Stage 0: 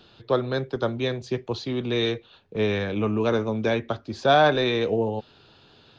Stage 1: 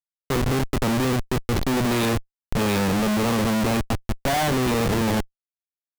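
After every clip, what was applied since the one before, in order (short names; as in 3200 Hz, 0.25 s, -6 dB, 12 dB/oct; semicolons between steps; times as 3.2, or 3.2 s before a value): small resonant body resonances 210/790/2500 Hz, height 9 dB, ringing for 20 ms; AGC gain up to 13.5 dB; Schmitt trigger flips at -19.5 dBFS; gain -6 dB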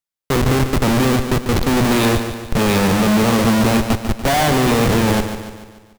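feedback echo 0.145 s, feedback 51%, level -9 dB; gain +6 dB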